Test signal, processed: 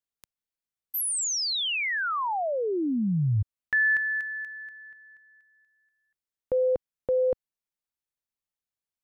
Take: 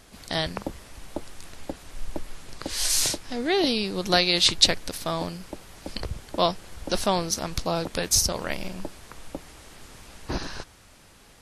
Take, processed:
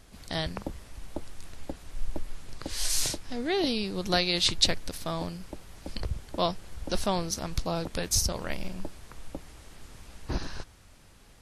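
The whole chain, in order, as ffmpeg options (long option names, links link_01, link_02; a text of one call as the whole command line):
ffmpeg -i in.wav -af "lowshelf=frequency=150:gain=8,volume=-5.5dB" out.wav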